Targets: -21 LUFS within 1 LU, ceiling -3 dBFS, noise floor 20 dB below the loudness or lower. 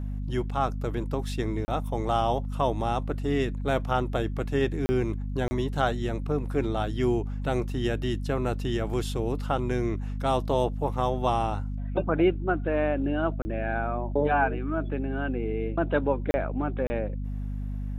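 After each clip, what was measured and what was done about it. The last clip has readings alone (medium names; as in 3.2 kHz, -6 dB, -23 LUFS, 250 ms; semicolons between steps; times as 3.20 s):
dropouts 6; longest dropout 30 ms; hum 50 Hz; highest harmonic 250 Hz; hum level -29 dBFS; loudness -28.5 LUFS; peak level -11.0 dBFS; loudness target -21.0 LUFS
-> interpolate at 1.65/4.86/5.48/13.42/16.31/16.87 s, 30 ms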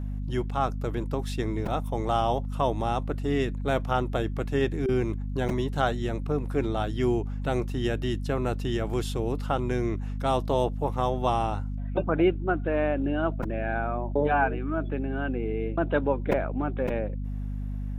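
dropouts 0; hum 50 Hz; highest harmonic 250 Hz; hum level -29 dBFS
-> de-hum 50 Hz, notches 5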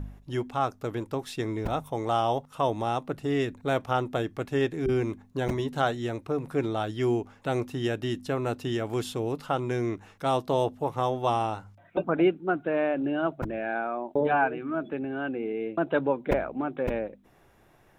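hum not found; loudness -29.0 LUFS; peak level -11.5 dBFS; loudness target -21.0 LUFS
-> trim +8 dB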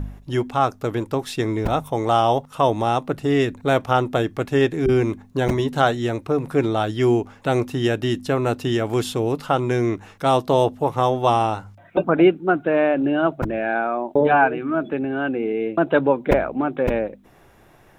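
loudness -21.0 LUFS; peak level -3.5 dBFS; noise floor -51 dBFS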